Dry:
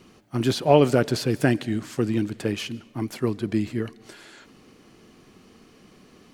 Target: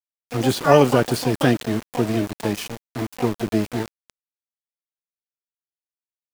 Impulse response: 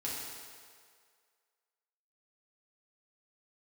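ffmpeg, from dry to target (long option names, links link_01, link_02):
-filter_complex "[0:a]asplit=2[link_01][link_02];[link_02]asetrate=88200,aresample=44100,atempo=0.5,volume=-7dB[link_03];[link_01][link_03]amix=inputs=2:normalize=0,aeval=exprs='val(0)*gte(abs(val(0)),0.0335)':channel_layout=same,volume=2dB"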